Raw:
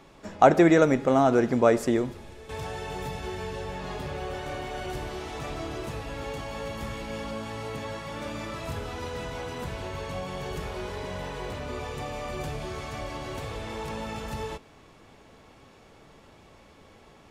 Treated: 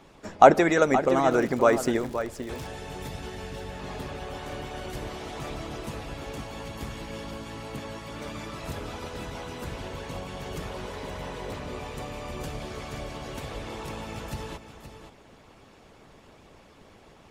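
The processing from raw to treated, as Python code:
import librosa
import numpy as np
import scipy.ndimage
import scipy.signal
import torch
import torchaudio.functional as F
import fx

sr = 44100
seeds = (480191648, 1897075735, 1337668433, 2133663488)

y = x + 10.0 ** (-10.5 / 20.0) * np.pad(x, (int(522 * sr / 1000.0), 0))[:len(x)]
y = fx.hpss(y, sr, part='harmonic', gain_db=-11)
y = fx.dmg_crackle(y, sr, seeds[0], per_s=120.0, level_db=-37.0, at=(1.3, 2.67), fade=0.02)
y = F.gain(torch.from_numpy(y), 4.0).numpy()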